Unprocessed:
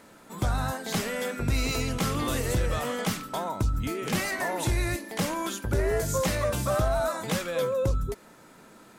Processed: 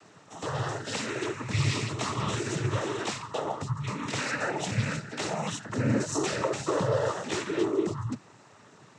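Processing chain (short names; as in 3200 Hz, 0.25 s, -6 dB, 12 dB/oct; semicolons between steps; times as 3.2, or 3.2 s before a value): frequency shift -150 Hz; noise vocoder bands 12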